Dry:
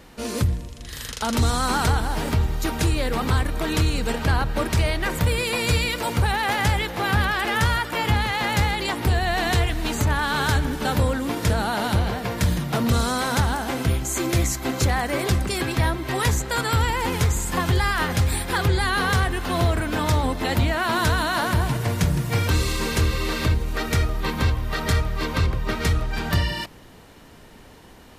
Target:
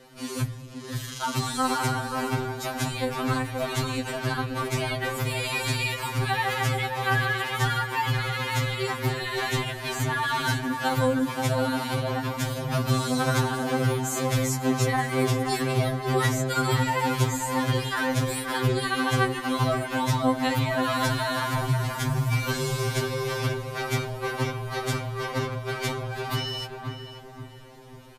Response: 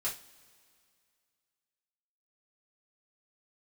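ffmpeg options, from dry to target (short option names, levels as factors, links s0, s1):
-filter_complex "[0:a]asettb=1/sr,asplit=3[s0][s1][s2];[s0]atrim=end=1.784[s3];[s1]atrim=start=1.78:end=2.34,asetpts=PTS-STARTPTS,afade=t=in:d=0.004:c=qsin,afade=t=out:st=0.556:d=0.004:c=qsin,bandreject=f=3500:w=8.5[s4];[s2]atrim=start=2.336[s5];[s3][s4]acrossfade=d=0.004:c1=hsin:c2=qsin[s6];[s6][s5]acrossfade=d=0.004:c1=qsin:c2=hsin,asplit=2[s7][s8];[s8]adelay=531,lowpass=f=1300:p=1,volume=0.631,asplit=2[s9][s10];[s10]adelay=531,lowpass=f=1300:p=1,volume=0.45,asplit=2[s11][s12];[s12]adelay=531,lowpass=f=1300:p=1,volume=0.45,asplit=2[s13][s14];[s14]adelay=531,lowpass=f=1300:p=1,volume=0.45,asplit=2[s15][s16];[s16]adelay=531,lowpass=f=1300:p=1,volume=0.45,asplit=2[s17][s18];[s18]adelay=531,lowpass=f=1300:p=1,volume=0.45[s19];[s7][s9][s11][s13][s15][s17][s19]amix=inputs=7:normalize=0,afftfilt=real='re*2.45*eq(mod(b,6),0)':imag='im*2.45*eq(mod(b,6),0)':win_size=2048:overlap=0.75,volume=0.841"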